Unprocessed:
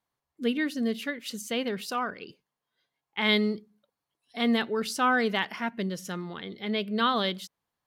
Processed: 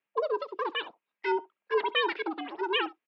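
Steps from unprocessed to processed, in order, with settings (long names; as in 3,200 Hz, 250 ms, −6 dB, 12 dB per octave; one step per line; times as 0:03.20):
far-end echo of a speakerphone 170 ms, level −18 dB
change of speed 2.56×
single-sideband voice off tune −160 Hz 410–3,300 Hz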